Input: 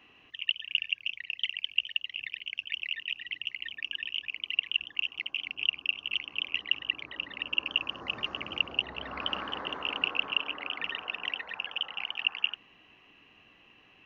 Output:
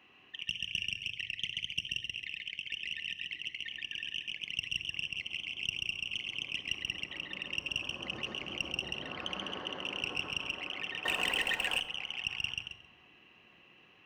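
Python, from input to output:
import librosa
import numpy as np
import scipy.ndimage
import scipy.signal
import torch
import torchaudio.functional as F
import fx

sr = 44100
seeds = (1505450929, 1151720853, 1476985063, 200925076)

p1 = fx.diode_clip(x, sr, knee_db=-15.5)
p2 = fx.dynamic_eq(p1, sr, hz=1200.0, q=0.92, threshold_db=-49.0, ratio=4.0, max_db=-8)
p3 = fx.echo_feedback(p2, sr, ms=134, feedback_pct=19, wet_db=-3.5)
p4 = fx.level_steps(p3, sr, step_db=23)
p5 = p3 + (p4 * librosa.db_to_amplitude(2.0))
p6 = scipy.signal.sosfilt(scipy.signal.butter(2, 59.0, 'highpass', fs=sr, output='sos'), p5)
p7 = fx.leveller(p6, sr, passes=3, at=(11.05, 11.8))
p8 = fx.room_shoebox(p7, sr, seeds[0], volume_m3=2300.0, walls='furnished', distance_m=0.98)
p9 = fx.band_squash(p8, sr, depth_pct=70, at=(0.77, 1.75))
y = p9 * librosa.db_to_amplitude(-6.0)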